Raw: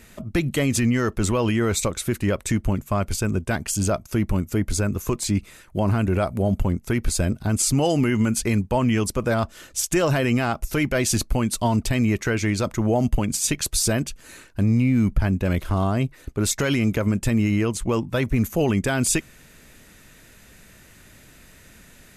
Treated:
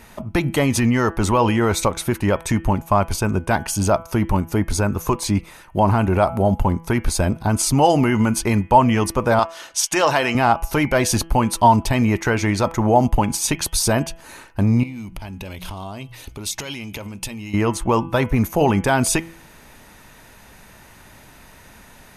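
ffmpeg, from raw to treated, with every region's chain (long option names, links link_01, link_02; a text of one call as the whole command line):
ffmpeg -i in.wav -filter_complex "[0:a]asettb=1/sr,asplit=3[link_01][link_02][link_03];[link_01]atrim=end=9.394[link_04];[link_02]atrim=start=9.39:end=10.35,asetpts=PTS-STARTPTS,afade=type=in:duration=0.004:curve=qsin,afade=type=out:start_time=0.956:duration=0.004:curve=qsin,lowpass=4800,aemphasis=mode=production:type=riaa[link_05];[link_03]atrim=start=10.346[link_06];[link_04][link_05]acrossfade=duration=0.004:curve1=hsin:curve2=qsin[link_07];[link_07][link_06]acrossfade=duration=0.004:curve1=qsin:curve2=hsin,asettb=1/sr,asplit=3[link_08][link_09][link_10];[link_08]atrim=end=14.834[link_11];[link_09]atrim=start=14.83:end=17.54,asetpts=PTS-STARTPTS,afade=type=in:duration=0.004:curve=qsin,afade=type=out:start_time=2.706:duration=0.004:curve=qsin,bandreject=frequency=60:width_type=h:width=6,bandreject=frequency=120:width_type=h:width=6,bandreject=frequency=180:width_type=h:width=6,acompressor=threshold=-31dB:ratio=20:attack=3.2:release=140:knee=1:detection=peak,highshelf=frequency=2100:width_type=q:width=1.5:gain=9[link_12];[link_10]atrim=start=17.536[link_13];[link_11][link_12]acrossfade=duration=0.004:curve1=hsin:curve2=qsin[link_14];[link_14][link_13]acrossfade=duration=0.004:curve1=qsin:curve2=hsin,equalizer=frequency=890:width_type=o:width=0.7:gain=12.5,bandreject=frequency=7500:width=7.1,bandreject=frequency=165.7:width_type=h:width=4,bandreject=frequency=331.4:width_type=h:width=4,bandreject=frequency=497.1:width_type=h:width=4,bandreject=frequency=662.8:width_type=h:width=4,bandreject=frequency=828.5:width_type=h:width=4,bandreject=frequency=994.2:width_type=h:width=4,bandreject=frequency=1159.9:width_type=h:width=4,bandreject=frequency=1325.6:width_type=h:width=4,bandreject=frequency=1491.3:width_type=h:width=4,bandreject=frequency=1657:width_type=h:width=4,bandreject=frequency=1822.7:width_type=h:width=4,bandreject=frequency=1988.4:width_type=h:width=4,bandreject=frequency=2154.1:width_type=h:width=4,bandreject=frequency=2319.8:width_type=h:width=4,bandreject=frequency=2485.5:width_type=h:width=4,bandreject=frequency=2651.2:width_type=h:width=4,bandreject=frequency=2816.9:width_type=h:width=4,bandreject=frequency=2982.6:width_type=h:width=4,bandreject=frequency=3148.3:width_type=h:width=4,bandreject=frequency=3314:width_type=h:width=4,volume=2.5dB" out.wav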